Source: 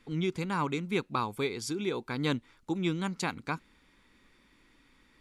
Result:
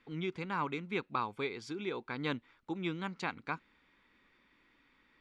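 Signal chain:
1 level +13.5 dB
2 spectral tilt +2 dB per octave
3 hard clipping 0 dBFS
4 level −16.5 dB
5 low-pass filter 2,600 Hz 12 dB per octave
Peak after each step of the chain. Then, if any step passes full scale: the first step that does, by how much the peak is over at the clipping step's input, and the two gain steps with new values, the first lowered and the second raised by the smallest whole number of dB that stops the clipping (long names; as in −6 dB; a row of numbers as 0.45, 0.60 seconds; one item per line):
−3.5, −2.0, −2.0, −18.5, −20.5 dBFS
no step passes full scale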